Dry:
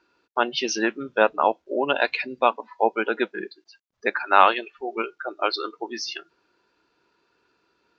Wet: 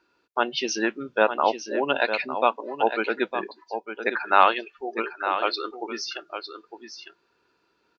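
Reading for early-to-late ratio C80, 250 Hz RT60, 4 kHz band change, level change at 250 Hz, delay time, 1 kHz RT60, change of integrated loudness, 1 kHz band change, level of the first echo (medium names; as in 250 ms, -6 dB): no reverb, no reverb, -1.0 dB, -1.0 dB, 906 ms, no reverb, -1.5 dB, -1.0 dB, -9.0 dB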